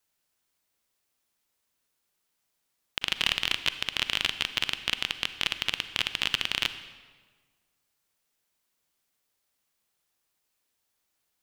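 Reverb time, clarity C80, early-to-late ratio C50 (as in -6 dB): 1.5 s, 13.0 dB, 11.5 dB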